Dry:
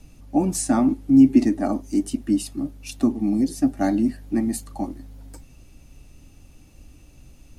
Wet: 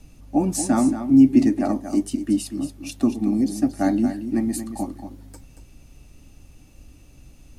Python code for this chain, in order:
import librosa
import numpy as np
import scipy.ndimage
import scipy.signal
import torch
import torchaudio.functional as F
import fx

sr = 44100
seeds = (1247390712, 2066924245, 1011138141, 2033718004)

y = x + 10.0 ** (-10.0 / 20.0) * np.pad(x, (int(230 * sr / 1000.0), 0))[:len(x)]